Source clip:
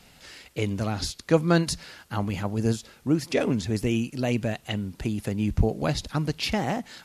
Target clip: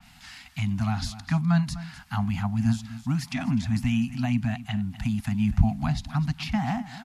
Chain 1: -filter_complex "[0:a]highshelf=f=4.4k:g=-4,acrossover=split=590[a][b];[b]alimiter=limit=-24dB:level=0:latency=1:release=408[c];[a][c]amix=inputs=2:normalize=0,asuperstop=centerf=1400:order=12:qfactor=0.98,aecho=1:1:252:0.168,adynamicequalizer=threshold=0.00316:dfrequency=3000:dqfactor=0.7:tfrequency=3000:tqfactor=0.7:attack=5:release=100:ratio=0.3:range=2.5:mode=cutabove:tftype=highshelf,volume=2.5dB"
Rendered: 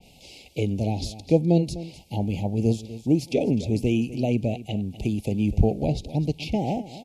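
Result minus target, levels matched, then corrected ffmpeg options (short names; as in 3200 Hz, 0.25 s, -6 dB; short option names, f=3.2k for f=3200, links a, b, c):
500 Hz band +16.5 dB
-filter_complex "[0:a]highshelf=f=4.4k:g=-4,acrossover=split=590[a][b];[b]alimiter=limit=-24dB:level=0:latency=1:release=408[c];[a][c]amix=inputs=2:normalize=0,asuperstop=centerf=430:order=12:qfactor=0.98,aecho=1:1:252:0.168,adynamicequalizer=threshold=0.00316:dfrequency=3000:dqfactor=0.7:tfrequency=3000:tqfactor=0.7:attack=5:release=100:ratio=0.3:range=2.5:mode=cutabove:tftype=highshelf,volume=2.5dB"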